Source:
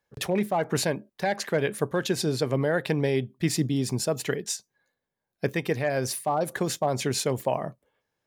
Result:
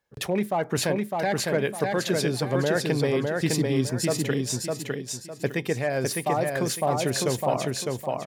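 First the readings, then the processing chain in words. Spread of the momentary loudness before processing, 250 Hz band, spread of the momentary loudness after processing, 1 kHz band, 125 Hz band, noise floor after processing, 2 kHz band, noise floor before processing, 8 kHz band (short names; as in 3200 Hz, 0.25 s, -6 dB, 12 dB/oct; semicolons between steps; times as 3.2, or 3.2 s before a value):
4 LU, +2.0 dB, 5 LU, +2.0 dB, +1.5 dB, -43 dBFS, +2.0 dB, -85 dBFS, +2.0 dB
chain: feedback echo 0.606 s, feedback 31%, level -3 dB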